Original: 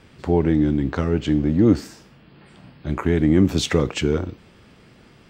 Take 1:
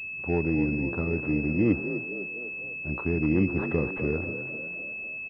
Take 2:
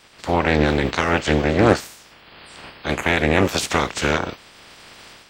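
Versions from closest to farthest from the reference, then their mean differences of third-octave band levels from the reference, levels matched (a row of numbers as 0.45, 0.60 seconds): 1, 2; 7.0, 9.0 decibels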